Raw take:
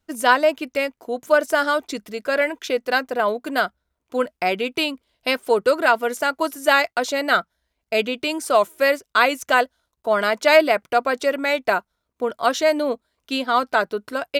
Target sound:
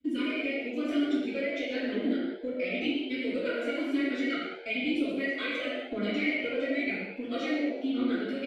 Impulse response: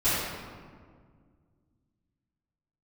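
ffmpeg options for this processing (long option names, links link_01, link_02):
-filter_complex "[0:a]equalizer=frequency=510:width_type=o:width=0.2:gain=12,bandreject=frequency=1700:width=22,aphaser=in_gain=1:out_gain=1:delay=2.2:decay=0.65:speed=0.59:type=triangular,asplit=3[link_01][link_02][link_03];[link_01]bandpass=frequency=270:width_type=q:width=8,volume=0dB[link_04];[link_02]bandpass=frequency=2290:width_type=q:width=8,volume=-6dB[link_05];[link_03]bandpass=frequency=3010:width_type=q:width=8,volume=-9dB[link_06];[link_04][link_05][link_06]amix=inputs=3:normalize=0,acrossover=split=120[link_07][link_08];[link_08]acompressor=threshold=-45dB:ratio=3[link_09];[link_07][link_09]amix=inputs=2:normalize=0,atempo=1.7,asplit=5[link_10][link_11][link_12][link_13][link_14];[link_11]adelay=121,afreqshift=93,volume=-11.5dB[link_15];[link_12]adelay=242,afreqshift=186,volume=-19.2dB[link_16];[link_13]adelay=363,afreqshift=279,volume=-27dB[link_17];[link_14]adelay=484,afreqshift=372,volume=-34.7dB[link_18];[link_10][link_15][link_16][link_17][link_18]amix=inputs=5:normalize=0[link_19];[1:a]atrim=start_sample=2205,afade=type=out:start_time=0.28:duration=0.01,atrim=end_sample=12789[link_20];[link_19][link_20]afir=irnorm=-1:irlink=0"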